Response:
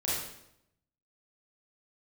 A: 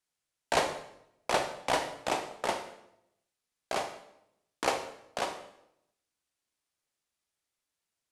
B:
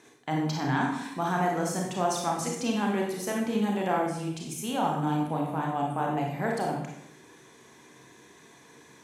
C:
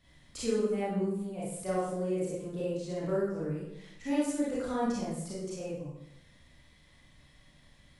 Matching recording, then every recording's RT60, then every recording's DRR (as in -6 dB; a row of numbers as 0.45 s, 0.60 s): C; 0.80 s, 0.80 s, 0.80 s; 6.5 dB, -1.0 dB, -8.0 dB